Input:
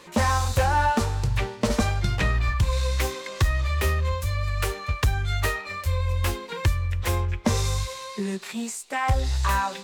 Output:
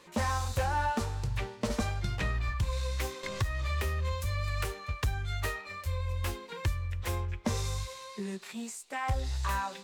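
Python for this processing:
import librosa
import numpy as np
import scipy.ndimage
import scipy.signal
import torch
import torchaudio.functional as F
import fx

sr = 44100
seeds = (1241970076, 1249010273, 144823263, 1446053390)

y = fx.band_squash(x, sr, depth_pct=100, at=(3.23, 4.65))
y = F.gain(torch.from_numpy(y), -8.5).numpy()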